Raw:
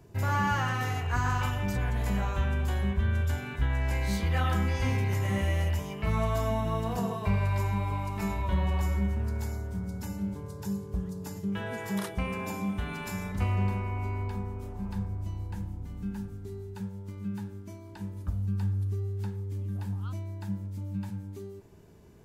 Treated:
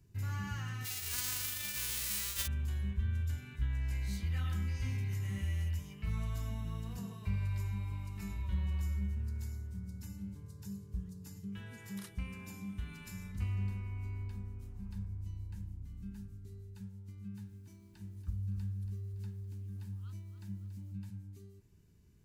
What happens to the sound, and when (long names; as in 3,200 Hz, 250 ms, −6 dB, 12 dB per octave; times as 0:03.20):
0:00.84–0:02.46: spectral envelope flattened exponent 0.1
0:17.10–0:20.92: feedback echo at a low word length 282 ms, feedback 55%, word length 10 bits, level −10 dB
whole clip: guitar amp tone stack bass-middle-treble 6-0-2; notch filter 3,400 Hz, Q 23; level +6 dB